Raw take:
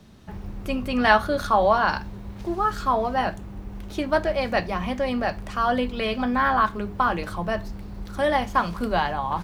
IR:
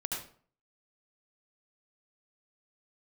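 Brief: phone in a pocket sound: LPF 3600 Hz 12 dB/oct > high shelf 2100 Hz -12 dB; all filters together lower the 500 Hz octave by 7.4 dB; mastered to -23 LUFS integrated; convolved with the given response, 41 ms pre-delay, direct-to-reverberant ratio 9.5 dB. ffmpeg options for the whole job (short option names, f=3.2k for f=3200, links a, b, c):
-filter_complex "[0:a]equalizer=f=500:t=o:g=-8.5,asplit=2[a][b];[1:a]atrim=start_sample=2205,adelay=41[c];[b][c]afir=irnorm=-1:irlink=0,volume=-12.5dB[d];[a][d]amix=inputs=2:normalize=0,lowpass=3.6k,highshelf=f=2.1k:g=-12,volume=5dB"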